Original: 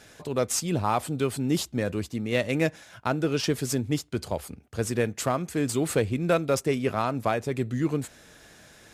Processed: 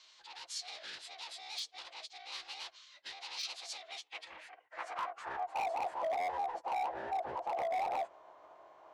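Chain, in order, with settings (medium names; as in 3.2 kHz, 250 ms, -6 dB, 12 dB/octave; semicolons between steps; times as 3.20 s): split-band scrambler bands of 500 Hz; treble shelf 6.4 kHz -9.5 dB; valve stage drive 34 dB, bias 0.4; formant-preserving pitch shift -11 st; band-pass sweep 4.2 kHz -> 710 Hz, 3.68–5.75 s; wavefolder -35 dBFS; trim +5.5 dB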